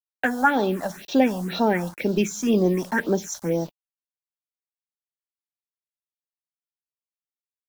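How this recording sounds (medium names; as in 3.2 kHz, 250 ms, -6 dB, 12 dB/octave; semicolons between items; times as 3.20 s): a quantiser's noise floor 8-bit, dither none; phasing stages 4, 2 Hz, lowest notch 370–2100 Hz; Vorbis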